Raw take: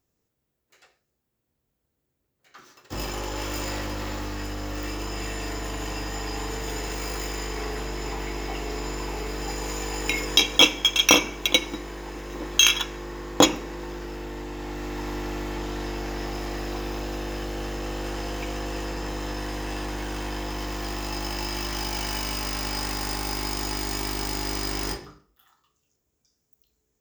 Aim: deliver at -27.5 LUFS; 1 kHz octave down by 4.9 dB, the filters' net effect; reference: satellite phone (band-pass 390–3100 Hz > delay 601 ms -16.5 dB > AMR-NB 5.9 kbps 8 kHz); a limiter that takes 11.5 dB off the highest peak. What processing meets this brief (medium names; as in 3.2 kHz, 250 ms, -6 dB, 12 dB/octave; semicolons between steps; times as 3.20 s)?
peaking EQ 1 kHz -6 dB; peak limiter -13 dBFS; band-pass 390–3100 Hz; delay 601 ms -16.5 dB; trim +12.5 dB; AMR-NB 5.9 kbps 8 kHz